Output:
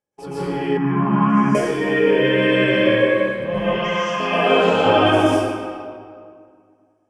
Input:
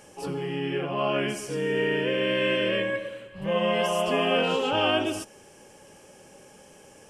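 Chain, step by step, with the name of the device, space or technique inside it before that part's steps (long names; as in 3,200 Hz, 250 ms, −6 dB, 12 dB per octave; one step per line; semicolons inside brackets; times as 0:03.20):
noise gate −41 dBFS, range −36 dB
0:03.58–0:04.20: elliptic band-pass filter 960–6,300 Hz, stop band 40 dB
notch filter 2,800 Hz, Q 7.5
swimming-pool hall (convolution reverb RT60 2.1 s, pre-delay 116 ms, DRR −10 dB; high-shelf EQ 4,500 Hz −7.5 dB)
0:00.77–0:01.55: drawn EQ curve 100 Hz 0 dB, 200 Hz +13 dB, 550 Hz −22 dB, 930 Hz +8 dB, 3,400 Hz −15 dB, 6,100 Hz −9 dB, 9,800 Hz −21 dB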